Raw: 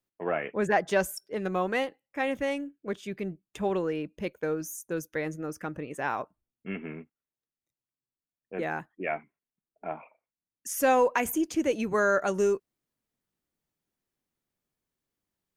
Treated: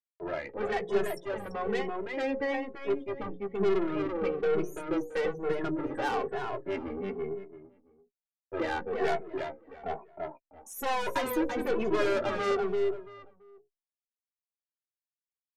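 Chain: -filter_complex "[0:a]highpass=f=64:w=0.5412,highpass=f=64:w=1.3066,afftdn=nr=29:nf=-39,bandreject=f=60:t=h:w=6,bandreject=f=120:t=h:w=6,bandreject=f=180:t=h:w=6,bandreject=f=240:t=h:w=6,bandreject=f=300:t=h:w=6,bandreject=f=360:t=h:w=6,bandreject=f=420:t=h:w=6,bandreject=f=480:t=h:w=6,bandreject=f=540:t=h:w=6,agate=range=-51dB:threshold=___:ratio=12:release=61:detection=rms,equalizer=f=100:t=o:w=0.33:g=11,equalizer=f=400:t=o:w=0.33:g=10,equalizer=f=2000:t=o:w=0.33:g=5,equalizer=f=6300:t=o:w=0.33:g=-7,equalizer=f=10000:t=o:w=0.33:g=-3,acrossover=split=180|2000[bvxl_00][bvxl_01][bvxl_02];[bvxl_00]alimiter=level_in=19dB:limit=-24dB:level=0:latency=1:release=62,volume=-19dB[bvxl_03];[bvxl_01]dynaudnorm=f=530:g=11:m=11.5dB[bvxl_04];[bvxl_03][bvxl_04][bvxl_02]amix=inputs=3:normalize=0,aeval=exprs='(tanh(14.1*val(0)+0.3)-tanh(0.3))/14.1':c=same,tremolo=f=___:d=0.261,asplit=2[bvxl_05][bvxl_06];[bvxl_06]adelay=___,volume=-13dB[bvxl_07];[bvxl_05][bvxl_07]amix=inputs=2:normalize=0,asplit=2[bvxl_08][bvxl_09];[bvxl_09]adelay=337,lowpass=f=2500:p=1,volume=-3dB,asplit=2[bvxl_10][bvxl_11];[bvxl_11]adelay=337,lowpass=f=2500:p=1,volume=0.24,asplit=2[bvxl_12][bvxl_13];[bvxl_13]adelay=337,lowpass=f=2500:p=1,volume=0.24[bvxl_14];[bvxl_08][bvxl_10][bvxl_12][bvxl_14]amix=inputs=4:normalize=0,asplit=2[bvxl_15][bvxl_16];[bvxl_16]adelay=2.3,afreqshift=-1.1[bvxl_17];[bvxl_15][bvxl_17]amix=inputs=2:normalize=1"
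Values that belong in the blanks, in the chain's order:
-53dB, 290, 15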